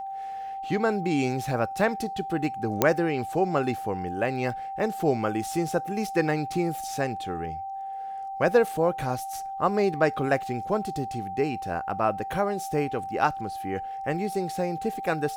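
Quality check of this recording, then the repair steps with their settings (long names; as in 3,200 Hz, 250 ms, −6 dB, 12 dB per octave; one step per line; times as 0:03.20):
whistle 780 Hz −32 dBFS
0:02.82: click −5 dBFS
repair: click removal
notch filter 780 Hz, Q 30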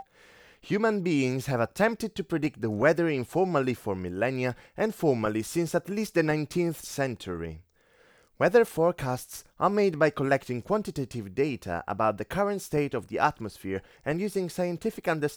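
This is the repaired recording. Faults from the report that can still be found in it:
none of them is left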